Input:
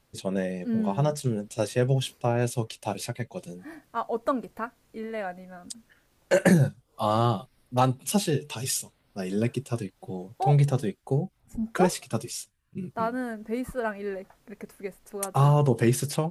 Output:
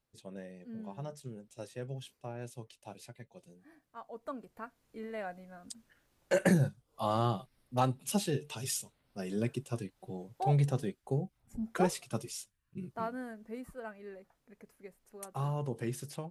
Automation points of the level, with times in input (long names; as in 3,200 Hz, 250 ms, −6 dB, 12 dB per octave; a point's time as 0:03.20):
0:04.06 −17.5 dB
0:05.04 −7 dB
0:12.78 −7 dB
0:13.83 −14.5 dB